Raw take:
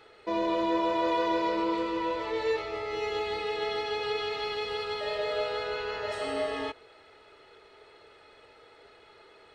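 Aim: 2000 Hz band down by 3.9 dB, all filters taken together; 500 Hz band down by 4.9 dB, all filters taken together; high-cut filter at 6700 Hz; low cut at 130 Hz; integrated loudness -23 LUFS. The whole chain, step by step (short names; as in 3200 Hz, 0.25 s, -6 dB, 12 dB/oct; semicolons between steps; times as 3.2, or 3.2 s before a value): HPF 130 Hz; LPF 6700 Hz; bell 500 Hz -6 dB; bell 2000 Hz -4.5 dB; gain +11 dB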